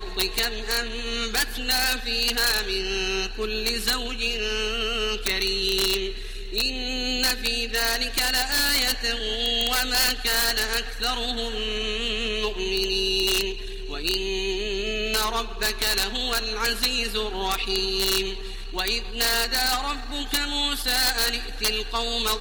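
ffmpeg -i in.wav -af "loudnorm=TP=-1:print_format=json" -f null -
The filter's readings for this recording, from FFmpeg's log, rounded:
"input_i" : "-23.7",
"input_tp" : "-8.7",
"input_lra" : "2.6",
"input_thresh" : "-33.8",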